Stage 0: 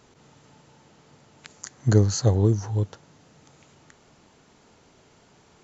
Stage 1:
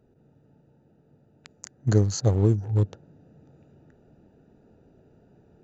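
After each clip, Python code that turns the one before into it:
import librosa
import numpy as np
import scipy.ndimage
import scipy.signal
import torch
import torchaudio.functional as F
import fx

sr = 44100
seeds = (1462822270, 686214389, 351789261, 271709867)

y = fx.wiener(x, sr, points=41)
y = fx.rider(y, sr, range_db=10, speed_s=0.5)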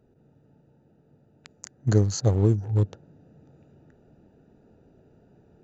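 y = x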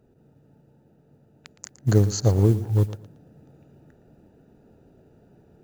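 y = fx.mod_noise(x, sr, seeds[0], snr_db=31)
y = fx.echo_feedback(y, sr, ms=115, feedback_pct=25, wet_db=-15.5)
y = y * 10.0 ** (2.0 / 20.0)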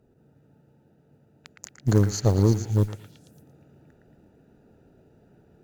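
y = fx.echo_stepped(x, sr, ms=113, hz=1700.0, octaves=0.7, feedback_pct=70, wet_db=-1)
y = fx.cheby_harmonics(y, sr, harmonics=(6,), levels_db=(-22,), full_scale_db=-4.5)
y = y * 10.0 ** (-2.0 / 20.0)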